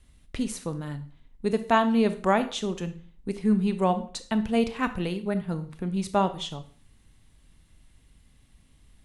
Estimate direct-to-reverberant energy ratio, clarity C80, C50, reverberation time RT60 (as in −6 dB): 10.0 dB, 18.0 dB, 13.5 dB, 0.45 s